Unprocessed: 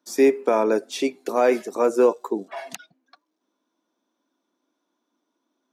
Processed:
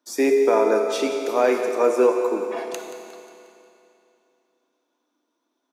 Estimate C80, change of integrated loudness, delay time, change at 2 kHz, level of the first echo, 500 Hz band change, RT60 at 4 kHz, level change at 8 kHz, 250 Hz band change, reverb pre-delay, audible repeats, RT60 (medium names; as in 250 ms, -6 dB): 5.0 dB, +1.0 dB, 179 ms, +2.0 dB, -13.0 dB, +1.5 dB, 2.7 s, +1.5 dB, -0.5 dB, 5 ms, 3, 2.7 s